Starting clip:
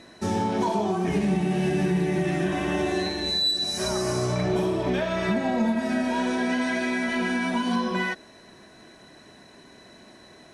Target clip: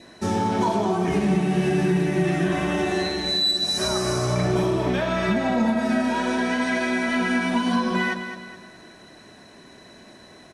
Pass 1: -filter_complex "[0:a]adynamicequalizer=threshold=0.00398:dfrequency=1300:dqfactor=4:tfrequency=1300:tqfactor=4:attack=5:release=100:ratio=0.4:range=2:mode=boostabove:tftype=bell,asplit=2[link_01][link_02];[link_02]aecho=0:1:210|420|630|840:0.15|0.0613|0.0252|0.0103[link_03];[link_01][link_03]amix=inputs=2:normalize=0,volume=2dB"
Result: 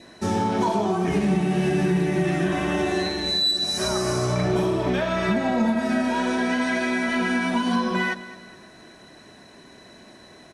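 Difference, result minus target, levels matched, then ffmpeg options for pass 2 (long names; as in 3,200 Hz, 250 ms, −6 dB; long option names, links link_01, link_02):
echo-to-direct −7 dB
-filter_complex "[0:a]adynamicequalizer=threshold=0.00398:dfrequency=1300:dqfactor=4:tfrequency=1300:tqfactor=4:attack=5:release=100:ratio=0.4:range=2:mode=boostabove:tftype=bell,asplit=2[link_01][link_02];[link_02]aecho=0:1:210|420|630|840:0.335|0.137|0.0563|0.0231[link_03];[link_01][link_03]amix=inputs=2:normalize=0,volume=2dB"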